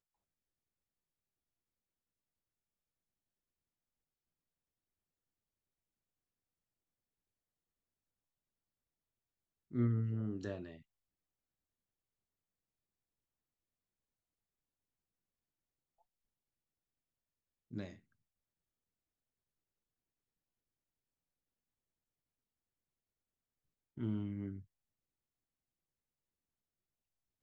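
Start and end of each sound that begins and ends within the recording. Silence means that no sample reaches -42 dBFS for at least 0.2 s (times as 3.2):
9.74–10.71
17.73–17.88
23.98–24.58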